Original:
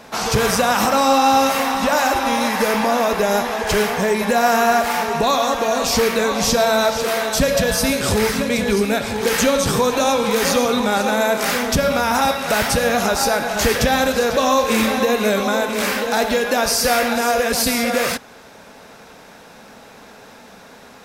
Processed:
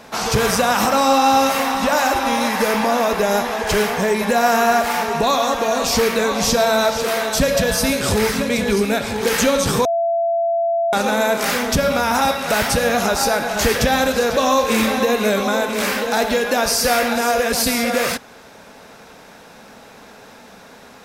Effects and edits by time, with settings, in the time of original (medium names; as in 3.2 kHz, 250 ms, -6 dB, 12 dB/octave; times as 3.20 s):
9.85–10.93 s: bleep 675 Hz -15.5 dBFS